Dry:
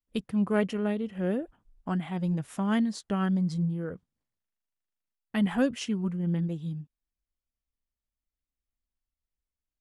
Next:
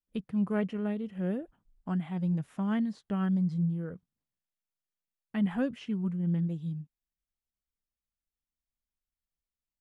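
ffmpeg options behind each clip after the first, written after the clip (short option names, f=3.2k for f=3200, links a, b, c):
-filter_complex "[0:a]equalizer=f=170:w=1.8:g=5.5,acrossover=split=3300[a][b];[b]acompressor=threshold=-57dB:ratio=4:attack=1:release=60[c];[a][c]amix=inputs=2:normalize=0,volume=-6dB"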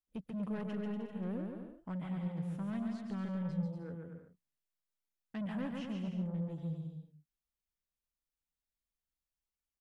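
-filter_complex "[0:a]asoftclip=type=tanh:threshold=-30.5dB,asplit=2[a][b];[b]aecho=0:1:140|238|306.6|354.6|388.2:0.631|0.398|0.251|0.158|0.1[c];[a][c]amix=inputs=2:normalize=0,volume=-5dB"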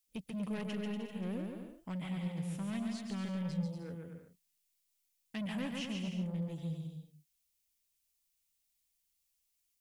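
-af "aexciter=amount=3.9:drive=3.6:freq=2.1k"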